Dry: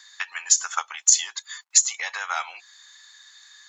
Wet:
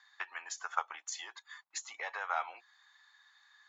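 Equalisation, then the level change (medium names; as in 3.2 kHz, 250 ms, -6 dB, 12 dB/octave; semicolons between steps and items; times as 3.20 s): band-pass filter 320 Hz, Q 0.62; distance through air 58 m; +1.5 dB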